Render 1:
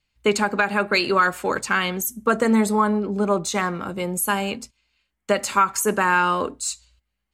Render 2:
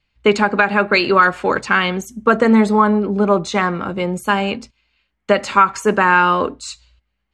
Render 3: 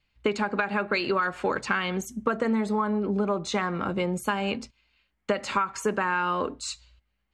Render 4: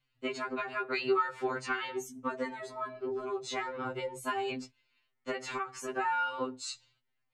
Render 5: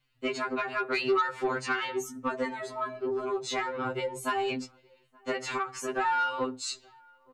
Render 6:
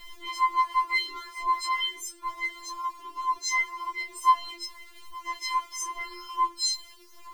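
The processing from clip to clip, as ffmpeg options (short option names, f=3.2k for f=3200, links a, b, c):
-af "lowpass=3.9k,volume=6dB"
-af "acompressor=threshold=-19dB:ratio=6,volume=-3.5dB"
-af "afftfilt=real='re*2.45*eq(mod(b,6),0)':imag='im*2.45*eq(mod(b,6),0)':win_size=2048:overlap=0.75,volume=-4dB"
-filter_complex "[0:a]asoftclip=type=tanh:threshold=-24dB,asplit=2[a][b];[b]adelay=874.6,volume=-28dB,highshelf=f=4k:g=-19.7[c];[a][c]amix=inputs=2:normalize=0,volume=5dB"
-af "aeval=exprs='val(0)+0.5*0.00501*sgn(val(0))':c=same,afftfilt=real='re*4*eq(mod(b,16),0)':imag='im*4*eq(mod(b,16),0)':win_size=2048:overlap=0.75,volume=4.5dB"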